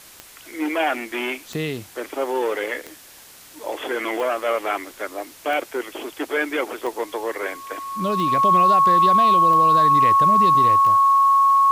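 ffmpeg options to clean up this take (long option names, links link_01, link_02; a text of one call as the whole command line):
ffmpeg -i in.wav -af "adeclick=threshold=4,bandreject=frequency=1100:width=30,afwtdn=0.0063" out.wav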